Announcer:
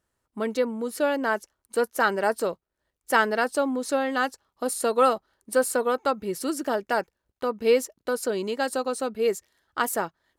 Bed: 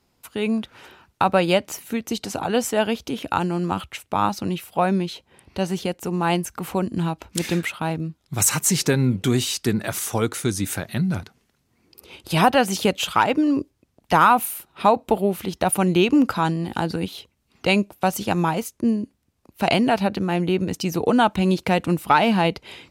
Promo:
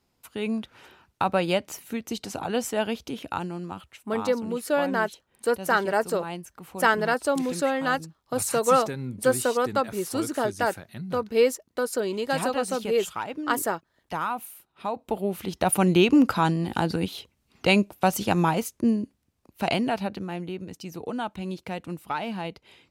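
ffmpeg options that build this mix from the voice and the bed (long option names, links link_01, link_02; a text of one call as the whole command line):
ffmpeg -i stem1.wav -i stem2.wav -filter_complex "[0:a]adelay=3700,volume=0dB[link_01];[1:a]volume=7.5dB,afade=type=out:start_time=3.05:duration=0.78:silence=0.375837,afade=type=in:start_time=14.88:duration=0.96:silence=0.223872,afade=type=out:start_time=18.66:duration=1.9:silence=0.237137[link_02];[link_01][link_02]amix=inputs=2:normalize=0" out.wav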